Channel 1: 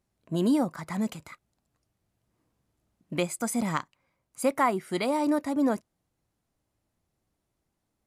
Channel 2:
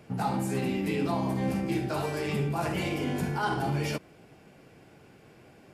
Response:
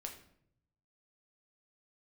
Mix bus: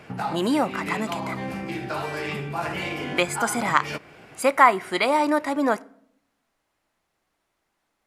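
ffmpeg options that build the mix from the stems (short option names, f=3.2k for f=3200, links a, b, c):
-filter_complex "[0:a]equalizer=f=91:w=0.57:g=-10.5,volume=0.5dB,asplit=3[a][b][c];[b]volume=-10.5dB[d];[1:a]acompressor=threshold=-35dB:ratio=3,volume=1dB,asplit=2[e][f];[f]volume=-12dB[g];[c]apad=whole_len=252848[h];[e][h]sidechaincompress=threshold=-33dB:ratio=8:attack=12:release=177[i];[2:a]atrim=start_sample=2205[j];[d][g]amix=inputs=2:normalize=0[k];[k][j]afir=irnorm=-1:irlink=0[l];[a][i][l]amix=inputs=3:normalize=0,equalizer=f=1.7k:t=o:w=2.9:g=10.5"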